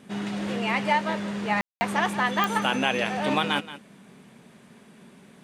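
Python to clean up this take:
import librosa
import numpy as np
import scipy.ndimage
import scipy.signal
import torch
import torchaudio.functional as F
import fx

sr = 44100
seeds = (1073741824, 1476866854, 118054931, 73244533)

y = fx.fix_declick_ar(x, sr, threshold=10.0)
y = fx.fix_ambience(y, sr, seeds[0], print_start_s=4.37, print_end_s=4.87, start_s=1.61, end_s=1.81)
y = fx.fix_echo_inverse(y, sr, delay_ms=176, level_db=-14.5)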